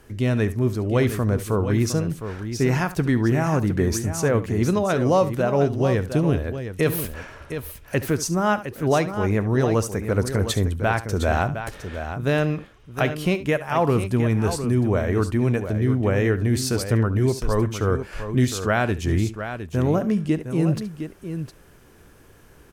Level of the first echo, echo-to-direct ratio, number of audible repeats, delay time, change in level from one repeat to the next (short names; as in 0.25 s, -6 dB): -15.5 dB, -8.5 dB, 2, 71 ms, no steady repeat